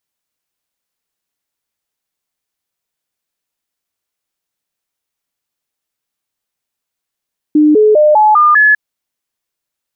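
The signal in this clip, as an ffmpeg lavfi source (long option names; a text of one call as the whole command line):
ffmpeg -f lavfi -i "aevalsrc='0.596*clip(min(mod(t,0.2),0.2-mod(t,0.2))/0.005,0,1)*sin(2*PI*302*pow(2,floor(t/0.2)/2)*mod(t,0.2))':duration=1.2:sample_rate=44100" out.wav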